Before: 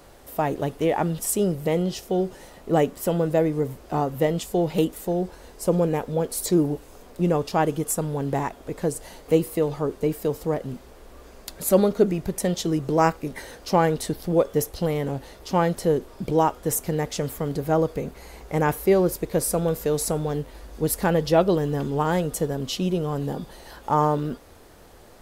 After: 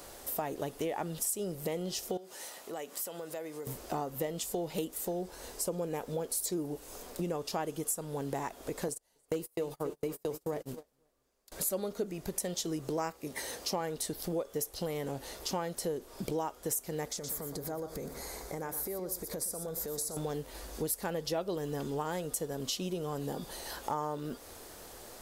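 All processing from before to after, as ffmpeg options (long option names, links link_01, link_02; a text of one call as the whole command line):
ffmpeg -i in.wav -filter_complex "[0:a]asettb=1/sr,asplit=3[link_01][link_02][link_03];[link_01]atrim=end=2.174[link_04];[link_02]atrim=start=2.17:end=3.67,asetpts=PTS-STARTPTS,afade=type=in:duration=0.004:curve=qsin,afade=type=out:start_time=1.496:duration=0.004:curve=qsin,highpass=frequency=800:poles=1,acompressor=threshold=-40dB:ratio=3:attack=3.2:release=140:knee=1:detection=peak[link_05];[link_03]atrim=start=3.666[link_06];[link_04][link_05]acrossfade=duration=0.004:curve1=hsin:curve2=qsin[link_07];[link_07][link_06]acrossfade=duration=0.004:curve1=qsin:curve2=hsin,asettb=1/sr,asplit=3[link_08][link_09][link_10];[link_08]atrim=end=8.884[link_11];[link_09]atrim=start=8.88:end=11.52,asetpts=PTS-STARTPTS,afade=type=in:duration=0.004:curve=qsin,afade=type=out:start_time=2.636:duration=0.004:curve=qsin,aecho=1:1:277|524:0.2|0.112,atrim=end_sample=116424,agate=range=-31dB:threshold=-32dB:ratio=16:release=100:detection=peak,volume=10dB,asoftclip=hard,volume=-10dB[link_12];[link_10]atrim=start=11.516[link_13];[link_11][link_12]acrossfade=duration=0.004:curve1=hsin:curve2=qsin[link_14];[link_14][link_13]acrossfade=duration=0.004:curve1=qsin:curve2=hsin,asettb=1/sr,asplit=3[link_15][link_16][link_17];[link_15]atrim=end=13.104[link_18];[link_16]atrim=start=13.1:end=13.81,asetpts=PTS-STARTPTS,afade=type=in:duration=0.004:curve=qsin,afade=type=out:start_time=0.706:duration=0.004:curve=qsin,highpass=59,bandreject=frequency=1500:width=9.8[link_19];[link_17]atrim=start=13.806[link_20];[link_18][link_19]acrossfade=duration=0.004:curve1=hsin:curve2=qsin[link_21];[link_21][link_20]acrossfade=duration=0.004:curve1=qsin:curve2=hsin,asettb=1/sr,asplit=3[link_22][link_23][link_24];[link_22]atrim=end=17.084[link_25];[link_23]atrim=start=17.08:end=20.17,asetpts=PTS-STARTPTS,afade=type=in:duration=0.004:curve=qsin,afade=type=out:start_time=3.086:duration=0.004:curve=qsin,equalizer=frequency=2800:width_type=o:width=0.4:gain=-11,acompressor=threshold=-33dB:ratio=6:attack=3.2:release=140:knee=1:detection=peak,aecho=1:1:121:0.299,atrim=end_sample=136269[link_26];[link_24]atrim=start=20.166[link_27];[link_25][link_26]acrossfade=duration=0.004:curve1=hsin:curve2=qsin[link_28];[link_28][link_27]acrossfade=duration=0.004:curve1=qsin:curve2=hsin,bass=frequency=250:gain=-6,treble=frequency=4000:gain=8,acompressor=threshold=-34dB:ratio=4" out.wav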